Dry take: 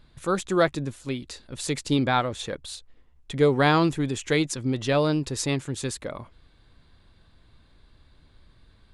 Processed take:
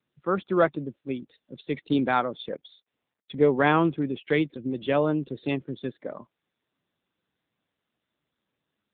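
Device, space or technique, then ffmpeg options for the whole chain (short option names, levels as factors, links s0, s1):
mobile call with aggressive noise cancelling: -af "highpass=f=160:w=0.5412,highpass=f=160:w=1.3066,afftdn=nr=22:nf=-37" -ar 8000 -c:a libopencore_amrnb -b:a 7950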